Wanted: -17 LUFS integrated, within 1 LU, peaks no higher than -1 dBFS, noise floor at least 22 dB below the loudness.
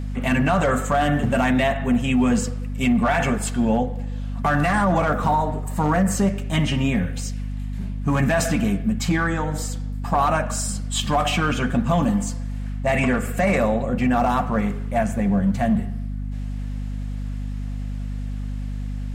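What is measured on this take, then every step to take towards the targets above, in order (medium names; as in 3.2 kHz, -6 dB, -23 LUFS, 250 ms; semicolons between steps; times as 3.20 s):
hum 50 Hz; highest harmonic 250 Hz; hum level -25 dBFS; loudness -22.5 LUFS; peak level -9.5 dBFS; loudness target -17.0 LUFS
-> de-hum 50 Hz, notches 5; trim +5.5 dB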